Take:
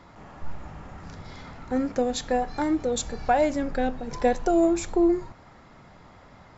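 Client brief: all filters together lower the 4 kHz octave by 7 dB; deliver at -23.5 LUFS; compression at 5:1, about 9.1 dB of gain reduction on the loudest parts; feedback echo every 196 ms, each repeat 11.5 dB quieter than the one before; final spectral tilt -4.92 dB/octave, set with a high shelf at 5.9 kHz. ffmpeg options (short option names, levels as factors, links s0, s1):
-af "equalizer=f=4000:t=o:g=-7,highshelf=f=5900:g=-3.5,acompressor=threshold=0.0447:ratio=5,aecho=1:1:196|392|588:0.266|0.0718|0.0194,volume=2.99"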